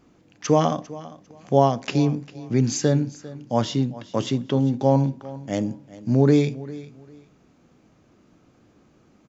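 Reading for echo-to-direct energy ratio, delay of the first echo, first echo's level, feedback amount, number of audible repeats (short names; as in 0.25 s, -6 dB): -18.0 dB, 0.399 s, -18.0 dB, 23%, 2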